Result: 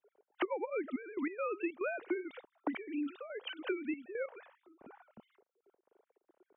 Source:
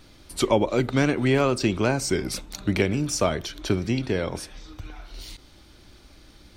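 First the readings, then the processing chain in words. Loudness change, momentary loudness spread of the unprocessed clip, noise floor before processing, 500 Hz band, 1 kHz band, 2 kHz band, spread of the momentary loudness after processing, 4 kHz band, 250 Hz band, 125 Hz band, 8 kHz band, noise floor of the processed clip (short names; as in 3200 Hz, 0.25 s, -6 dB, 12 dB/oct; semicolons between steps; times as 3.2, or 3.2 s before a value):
-14.5 dB, 20 LU, -52 dBFS, -14.0 dB, -14.0 dB, -12.5 dB, 9 LU, -18.5 dB, -14.0 dB, under -40 dB, under -40 dB, under -85 dBFS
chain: sine-wave speech; low shelf 250 Hz -7.5 dB; compressor 16:1, threshold -32 dBFS, peak gain reduction 21 dB; step gate "xx.xxxxxx..x.x" 141 bpm -12 dB; low-pass opened by the level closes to 470 Hz, open at -32.5 dBFS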